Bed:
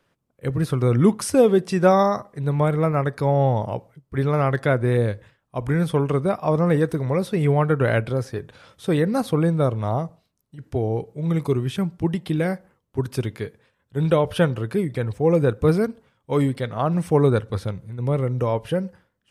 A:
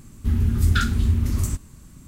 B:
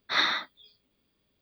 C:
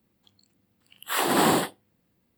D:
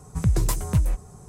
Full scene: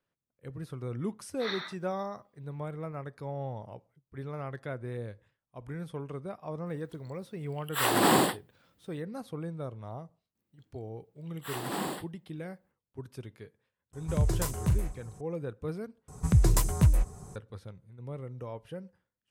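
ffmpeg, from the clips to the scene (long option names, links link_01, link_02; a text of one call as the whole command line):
ffmpeg -i bed.wav -i cue0.wav -i cue1.wav -i cue2.wav -i cue3.wav -filter_complex "[3:a]asplit=2[link_01][link_02];[4:a]asplit=2[link_03][link_04];[0:a]volume=-18dB[link_05];[link_03]asplit=2[link_06][link_07];[link_07]adelay=39,volume=-8dB[link_08];[link_06][link_08]amix=inputs=2:normalize=0[link_09];[link_05]asplit=2[link_10][link_11];[link_10]atrim=end=16.084[link_12];[link_04]atrim=end=1.28,asetpts=PTS-STARTPTS,volume=-1dB[link_13];[link_11]atrim=start=17.356[link_14];[2:a]atrim=end=1.41,asetpts=PTS-STARTPTS,volume=-12dB,afade=type=in:duration=0.004:curve=hsin,afade=type=out:start_time=1.406:duration=0.004:curve=hsin,adelay=1300[link_15];[link_01]atrim=end=2.37,asetpts=PTS-STARTPTS,volume=-2dB,afade=type=in:duration=0.004:curve=hsin,afade=type=out:start_time=2.366:duration=0.004:curve=hsin,adelay=293706S[link_16];[link_02]atrim=end=2.37,asetpts=PTS-STARTPTS,volume=-13.5dB,afade=type=in:duration=0.004:curve=hsin,afade=type=out:start_time=2.366:duration=0.004:curve=hsin,adelay=10350[link_17];[link_09]atrim=end=1.28,asetpts=PTS-STARTPTS,volume=-6dB,afade=type=in:duration=0.004:curve=hsin,afade=type=out:start_time=1.276:duration=0.004:curve=hsin,adelay=13930[link_18];[link_12][link_13]acrossfade=duration=0.004:curve1=hsin:curve2=hsin[link_19];[link_19][link_14]acrossfade=duration=0.004:curve1=hsin:curve2=hsin[link_20];[link_20][link_15][link_16][link_17][link_18]amix=inputs=5:normalize=0" out.wav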